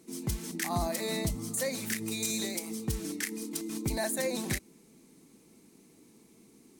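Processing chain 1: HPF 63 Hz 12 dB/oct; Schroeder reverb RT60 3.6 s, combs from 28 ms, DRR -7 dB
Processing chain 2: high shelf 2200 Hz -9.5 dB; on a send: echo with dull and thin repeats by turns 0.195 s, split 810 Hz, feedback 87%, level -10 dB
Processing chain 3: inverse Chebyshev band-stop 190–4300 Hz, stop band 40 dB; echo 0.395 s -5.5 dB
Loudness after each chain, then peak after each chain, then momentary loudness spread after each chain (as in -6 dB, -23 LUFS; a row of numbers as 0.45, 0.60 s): -25.0, -35.5, -38.0 LUFS; -11.5, -20.5, -20.0 dBFS; 12, 15, 4 LU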